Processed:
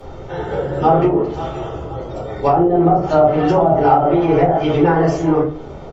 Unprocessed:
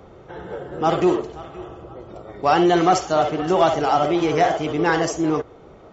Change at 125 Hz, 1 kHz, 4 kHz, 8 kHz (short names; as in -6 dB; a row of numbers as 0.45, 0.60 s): +10.0 dB, +4.0 dB, -5.5 dB, n/a